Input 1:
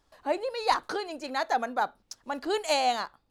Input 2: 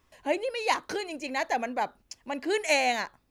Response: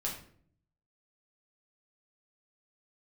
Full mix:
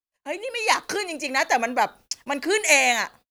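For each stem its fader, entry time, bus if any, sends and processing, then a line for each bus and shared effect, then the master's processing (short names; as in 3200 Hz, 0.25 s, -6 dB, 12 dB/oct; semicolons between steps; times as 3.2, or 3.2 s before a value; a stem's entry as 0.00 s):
+1.5 dB, 0.00 s, send -16.5 dB, ten-band EQ 125 Hz -8 dB, 250 Hz -4 dB, 1000 Hz -11 dB, 2000 Hz -5 dB, 8000 Hz -6 dB; harmonic-percussive split percussive -14 dB
-4.0 dB, 0.00 s, polarity flipped, no send, bell 120 Hz +4.5 dB 2.8 oct; AGC gain up to 3 dB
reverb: on, RT60 0.55 s, pre-delay 5 ms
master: gate -53 dBFS, range -33 dB; tilt +2 dB/oct; AGC gain up to 9 dB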